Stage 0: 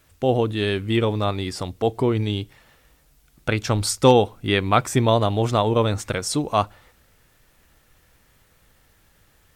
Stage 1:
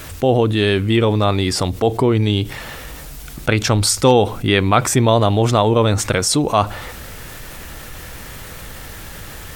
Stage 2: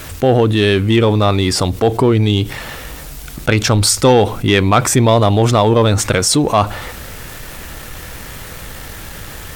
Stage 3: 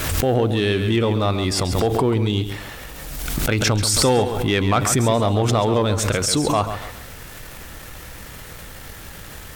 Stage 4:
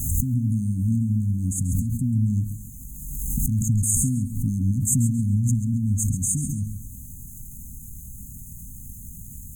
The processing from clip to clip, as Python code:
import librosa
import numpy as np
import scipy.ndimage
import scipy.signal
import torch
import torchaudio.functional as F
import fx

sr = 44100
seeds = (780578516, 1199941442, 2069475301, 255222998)

y1 = fx.env_flatten(x, sr, amount_pct=50)
y1 = F.gain(torch.from_numpy(y1), 1.0).numpy()
y2 = fx.leveller(y1, sr, passes=1)
y3 = fx.echo_feedback(y2, sr, ms=136, feedback_pct=30, wet_db=-10)
y3 = fx.pre_swell(y3, sr, db_per_s=32.0)
y3 = F.gain(torch.from_numpy(y3), -7.5).numpy()
y4 = fx.brickwall_bandstop(y3, sr, low_hz=270.0, high_hz=6200.0)